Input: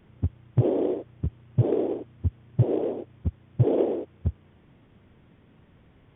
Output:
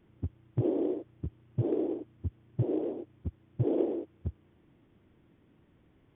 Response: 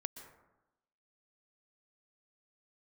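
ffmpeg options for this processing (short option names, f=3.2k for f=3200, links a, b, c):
-af "equalizer=f=320:t=o:w=0.45:g=8,volume=-9dB"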